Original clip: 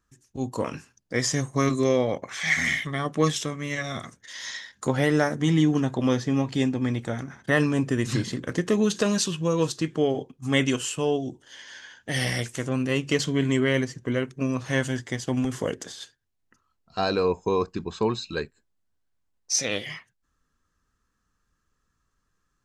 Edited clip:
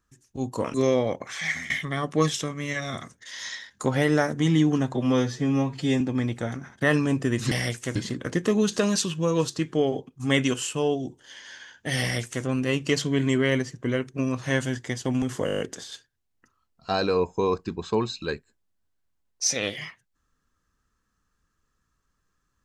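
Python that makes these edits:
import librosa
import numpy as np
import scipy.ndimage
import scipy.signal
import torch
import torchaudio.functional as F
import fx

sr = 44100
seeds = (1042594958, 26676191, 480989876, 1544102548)

y = fx.edit(x, sr, fx.cut(start_s=0.74, length_s=1.02),
    fx.fade_out_to(start_s=2.32, length_s=0.4, floor_db=-17.0),
    fx.stretch_span(start_s=5.96, length_s=0.71, factor=1.5),
    fx.duplicate(start_s=12.23, length_s=0.44, to_s=8.18),
    fx.stutter(start_s=15.68, slice_s=0.02, count=8), tone=tone)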